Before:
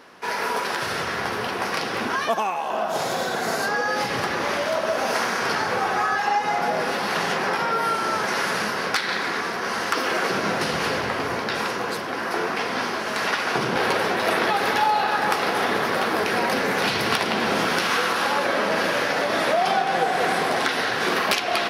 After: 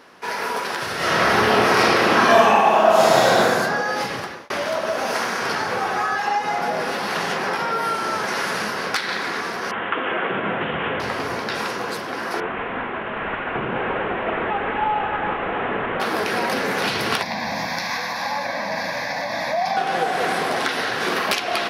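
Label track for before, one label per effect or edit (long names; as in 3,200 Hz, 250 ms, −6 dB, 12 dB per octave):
0.970000	3.400000	thrown reverb, RT60 1.8 s, DRR −9.5 dB
4.040000	4.500000	fade out
9.710000	11.000000	Butterworth low-pass 3,400 Hz 96 dB per octave
12.400000	16.000000	variable-slope delta modulation 16 kbit/s
17.220000	19.770000	phaser with its sweep stopped centre 2,000 Hz, stages 8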